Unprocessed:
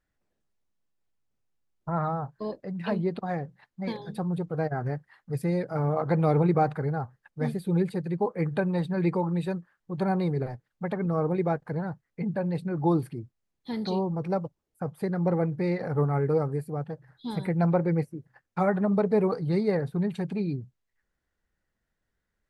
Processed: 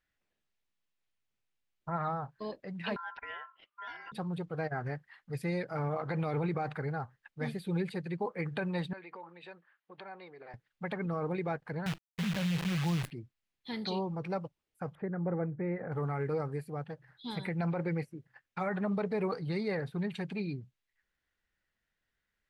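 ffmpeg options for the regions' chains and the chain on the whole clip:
ffmpeg -i in.wav -filter_complex "[0:a]asettb=1/sr,asplit=3[link_01][link_02][link_03];[link_01]atrim=end=2.964[link_04];[link_02]atrim=start=2.96:end=4.12,asetpts=PTS-STARTPTS,afade=type=in:duration=0.004:curve=qsin,afade=type=out:start_time=1.156:duration=0.004:curve=qsin,lowpass=2700,acompressor=threshold=-42dB:ratio=2:attack=3.2:release=140:knee=1:detection=peak,aeval=exprs='val(0)*sin(2*PI*1200*n/s)':channel_layout=same[link_05];[link_03]atrim=start=4.116[link_06];[link_04][link_05]acrossfade=duration=0.004:curve1=hsin:curve2=qsin[link_07];[link_07][link_06]acrossfade=duration=0.004:curve1=qsin:curve2=hsin,asettb=1/sr,asplit=3[link_08][link_09][link_10];[link_08]atrim=end=8.934[link_11];[link_09]atrim=start=8.93:end=10.54,asetpts=PTS-STARTPTS,afade=type=in:duration=0.004:curve=qsin,afade=type=out:start_time=1.606:duration=0.004:curve=qsin,acompressor=threshold=-33dB:ratio=8:attack=3.2:release=140:knee=1:detection=peak,highpass=460,lowpass=3400[link_12];[link_10]atrim=start=10.536[link_13];[link_11][link_12]acrossfade=duration=0.004:curve1=hsin:curve2=qsin[link_14];[link_14][link_13]acrossfade=duration=0.004:curve1=qsin:curve2=hsin,asettb=1/sr,asplit=3[link_15][link_16][link_17];[link_15]atrim=end=11.864[link_18];[link_16]atrim=start=11.86:end=13.11,asetpts=PTS-STARTPTS,afade=type=in:duration=0.004:curve=qsin,afade=type=out:start_time=1.246:duration=0.004:curve=qsin,lowshelf=frequency=230:width_type=q:width=3:gain=6.5,acrusher=bits=6:dc=4:mix=0:aa=0.000001[link_19];[link_17]atrim=start=13.106[link_20];[link_18][link_19]acrossfade=duration=0.004:curve1=hsin:curve2=qsin[link_21];[link_21][link_20]acrossfade=duration=0.004:curve1=qsin:curve2=hsin,asettb=1/sr,asplit=3[link_22][link_23][link_24];[link_22]atrim=end=14.954[link_25];[link_23]atrim=start=14.95:end=15.92,asetpts=PTS-STARTPTS,afade=type=in:duration=0.004:curve=qsin,afade=type=out:start_time=0.966:duration=0.004:curve=qsin,lowpass=frequency=1600:width=0.5412,lowpass=frequency=1600:width=1.3066,equalizer=frequency=1000:width_type=o:width=0.97:gain=-6,acompressor=mode=upward:threshold=-46dB:ratio=2.5:attack=3.2:release=140:knee=2.83:detection=peak[link_26];[link_24]atrim=start=15.916[link_27];[link_25][link_26]acrossfade=duration=0.004:curve1=hsin:curve2=qsin[link_28];[link_28][link_27]acrossfade=duration=0.004:curve1=qsin:curve2=hsin,equalizer=frequency=2700:width_type=o:width=2.1:gain=11.5,alimiter=limit=-17dB:level=0:latency=1:release=31,volume=-7.5dB" out.wav

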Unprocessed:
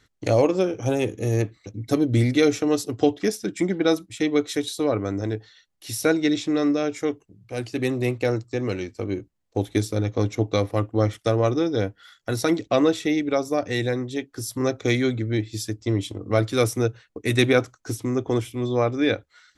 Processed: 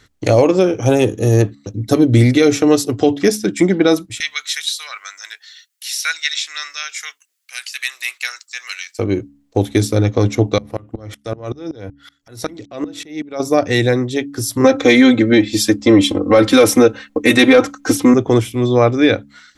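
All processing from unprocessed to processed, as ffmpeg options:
ffmpeg -i in.wav -filter_complex "[0:a]asettb=1/sr,asplit=3[link_01][link_02][link_03];[link_01]atrim=end=1.014[link_04];[link_02]atrim=start=1.01:end=1.95,asetpts=PTS-STARTPTS,afade=type=in:duration=0.004:curve=qsin,afade=type=out:start_time=0.936:duration=0.004:curve=qsin,equalizer=frequency=2200:width=5.1:gain=-10,agate=range=-9dB:threshold=-49dB:ratio=16:release=100:detection=peak[link_05];[link_03]atrim=start=1.946[link_06];[link_04][link_05]acrossfade=duration=0.004:curve1=hsin:curve2=qsin[link_07];[link_07][link_06]acrossfade=duration=0.004:curve1=qsin:curve2=hsin,asettb=1/sr,asplit=3[link_08][link_09][link_10];[link_08]atrim=end=4.204[link_11];[link_09]atrim=start=4.2:end=8.99,asetpts=PTS-STARTPTS,afade=type=in:duration=0.004:curve=qsin,afade=type=out:start_time=4.786:duration=0.004:curve=qsin,highpass=frequency=1500:width=0.5412,highpass=frequency=1500:width=1.3066,highshelf=frequency=6100:gain=11.5,acrossover=split=5800[link_12][link_13];[link_13]acompressor=threshold=-42dB:ratio=4:attack=1:release=60[link_14];[link_12][link_14]amix=inputs=2:normalize=0[link_15];[link_10]atrim=start=8.986[link_16];[link_11][link_15]acrossfade=duration=0.004:curve1=hsin:curve2=qsin[link_17];[link_17][link_16]acrossfade=duration=0.004:curve1=qsin:curve2=hsin,asettb=1/sr,asplit=3[link_18][link_19][link_20];[link_18]atrim=end=10.584[link_21];[link_19]atrim=start=10.58:end=13.4,asetpts=PTS-STARTPTS,afade=type=in:duration=0.004:curve=qsin,afade=type=out:start_time=2.816:duration=0.004:curve=qsin,acompressor=threshold=-27dB:ratio=2.5:attack=3.2:release=140:knee=1:detection=peak,aeval=exprs='val(0)*pow(10,-27*if(lt(mod(-5.3*n/s,1),2*abs(-5.3)/1000),1-mod(-5.3*n/s,1)/(2*abs(-5.3)/1000),(mod(-5.3*n/s,1)-2*abs(-5.3)/1000)/(1-2*abs(-5.3)/1000))/20)':channel_layout=same[link_22];[link_20]atrim=start=13.396[link_23];[link_21][link_22]acrossfade=duration=0.004:curve1=hsin:curve2=qsin[link_24];[link_24][link_23]acrossfade=duration=0.004:curve1=qsin:curve2=hsin,asettb=1/sr,asplit=3[link_25][link_26][link_27];[link_25]atrim=end=14.644[link_28];[link_26]atrim=start=14.64:end=18.14,asetpts=PTS-STARTPTS,afade=type=in:duration=0.004:curve=qsin,afade=type=out:start_time=3.496:duration=0.004:curve=qsin,bass=frequency=250:gain=-7,treble=frequency=4000:gain=-6,aecho=1:1:3.8:0.87,atrim=end_sample=154350,acontrast=84[link_29];[link_27]atrim=start=18.136[link_30];[link_28][link_29]acrossfade=duration=0.004:curve1=hsin:curve2=qsin[link_31];[link_31][link_30]acrossfade=duration=0.004:curve1=qsin:curve2=hsin,bandreject=frequency=70.77:width_type=h:width=4,bandreject=frequency=141.54:width_type=h:width=4,bandreject=frequency=212.31:width_type=h:width=4,bandreject=frequency=283.08:width_type=h:width=4,alimiter=level_in=11dB:limit=-1dB:release=50:level=0:latency=1,volume=-1dB" out.wav

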